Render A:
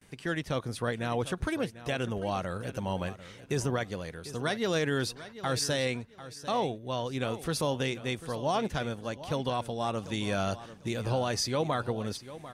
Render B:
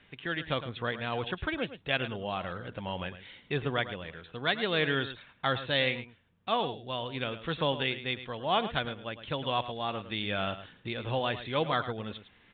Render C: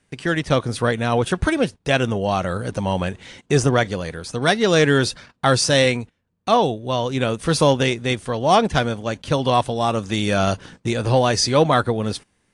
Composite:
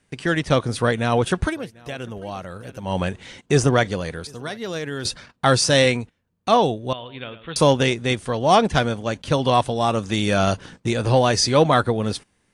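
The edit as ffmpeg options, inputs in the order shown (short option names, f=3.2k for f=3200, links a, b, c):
-filter_complex "[0:a]asplit=2[a][b];[2:a]asplit=4[c][d][e][f];[c]atrim=end=1.57[g];[a]atrim=start=1.41:end=2.98[h];[d]atrim=start=2.82:end=4.272[i];[b]atrim=start=4.268:end=5.052[j];[e]atrim=start=5.048:end=6.932[k];[1:a]atrim=start=6.928:end=7.562[l];[f]atrim=start=7.558[m];[g][h]acrossfade=d=0.16:c1=tri:c2=tri[n];[n][i]acrossfade=d=0.16:c1=tri:c2=tri[o];[o][j]acrossfade=d=0.004:c1=hsin:c2=hsin[p];[p][k]acrossfade=d=0.004:c1=hsin:c2=hsin[q];[q][l]acrossfade=d=0.004:c1=hsin:c2=hsin[r];[r][m]acrossfade=d=0.004:c1=hsin:c2=hsin"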